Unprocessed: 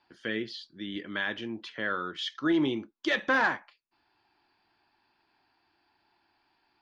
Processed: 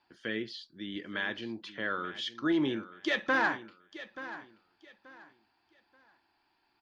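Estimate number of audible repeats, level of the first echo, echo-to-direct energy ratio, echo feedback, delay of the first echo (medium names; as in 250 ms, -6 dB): 2, -14.5 dB, -14.0 dB, 26%, 881 ms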